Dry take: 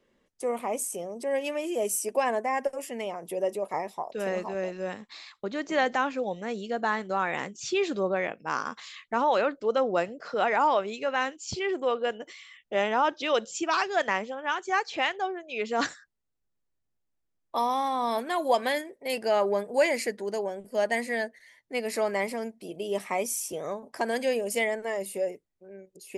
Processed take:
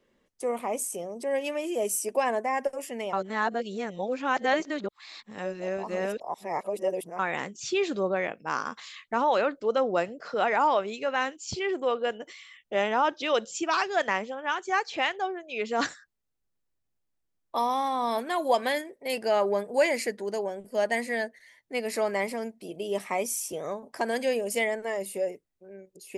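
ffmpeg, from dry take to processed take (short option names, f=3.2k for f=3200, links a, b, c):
-filter_complex "[0:a]asplit=3[a][b][c];[a]atrim=end=3.132[d];[b]atrim=start=3.128:end=7.192,asetpts=PTS-STARTPTS,areverse[e];[c]atrim=start=7.188[f];[d][e]acrossfade=d=0.004:c1=hsin:c2=hsin[g];[g][f]acrossfade=d=0.004:c1=hsin:c2=hsin"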